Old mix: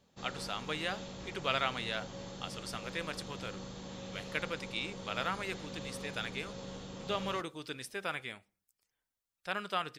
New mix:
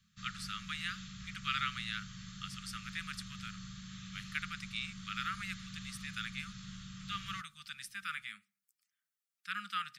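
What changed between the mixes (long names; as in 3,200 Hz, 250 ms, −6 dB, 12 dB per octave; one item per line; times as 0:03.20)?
speech: add Chebyshev high-pass filter 310 Hz, order 2
master: add Chebyshev band-stop filter 210–1,200 Hz, order 5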